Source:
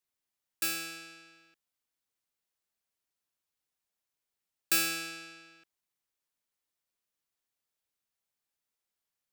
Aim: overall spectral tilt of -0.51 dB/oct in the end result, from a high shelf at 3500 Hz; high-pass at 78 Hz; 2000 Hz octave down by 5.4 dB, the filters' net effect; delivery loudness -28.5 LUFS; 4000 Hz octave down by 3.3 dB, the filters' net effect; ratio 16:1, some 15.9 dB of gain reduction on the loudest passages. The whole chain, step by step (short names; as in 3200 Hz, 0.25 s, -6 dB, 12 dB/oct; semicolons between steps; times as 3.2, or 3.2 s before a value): HPF 78 Hz; bell 2000 Hz -7 dB; high shelf 3500 Hz +3.5 dB; bell 4000 Hz -5.5 dB; compressor 16:1, threshold -36 dBFS; gain +14 dB